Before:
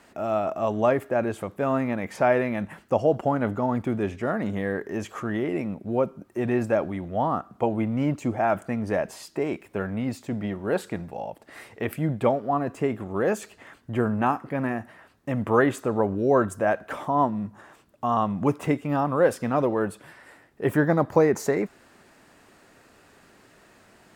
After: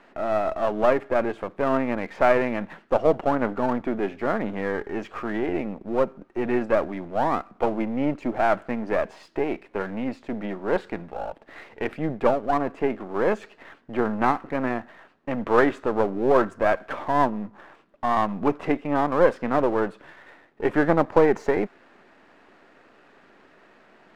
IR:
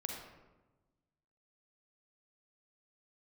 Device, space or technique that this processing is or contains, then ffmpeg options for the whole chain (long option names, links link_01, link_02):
crystal radio: -af "highpass=220,lowpass=2700,aeval=exprs='if(lt(val(0),0),0.447*val(0),val(0))':channel_layout=same,volume=4.5dB"